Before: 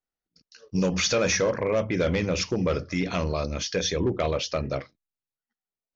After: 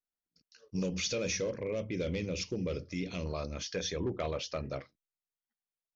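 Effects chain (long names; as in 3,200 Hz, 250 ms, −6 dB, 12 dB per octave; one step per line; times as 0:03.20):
0:00.83–0:03.26: flat-topped bell 1,100 Hz −10 dB
level −9 dB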